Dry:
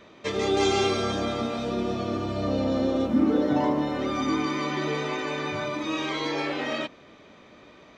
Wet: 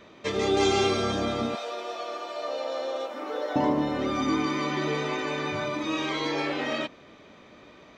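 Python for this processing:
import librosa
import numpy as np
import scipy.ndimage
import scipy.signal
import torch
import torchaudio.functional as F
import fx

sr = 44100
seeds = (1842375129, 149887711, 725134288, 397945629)

y = fx.highpass(x, sr, hz=520.0, slope=24, at=(1.55, 3.56))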